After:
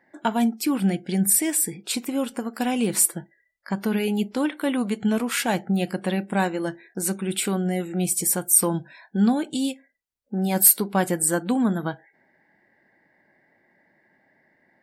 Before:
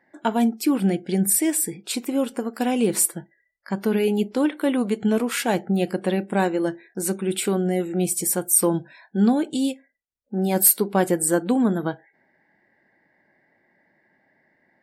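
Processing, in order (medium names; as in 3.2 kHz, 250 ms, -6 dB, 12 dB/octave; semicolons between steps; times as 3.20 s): dynamic bell 410 Hz, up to -7 dB, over -34 dBFS, Q 1.2; trim +1 dB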